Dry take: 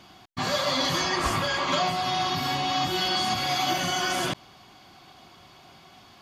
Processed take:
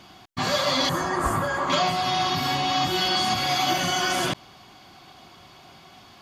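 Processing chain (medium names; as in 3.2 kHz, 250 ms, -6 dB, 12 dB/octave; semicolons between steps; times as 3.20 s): 0.89–1.70 s: high-order bell 3.6 kHz -14 dB; trim +2.5 dB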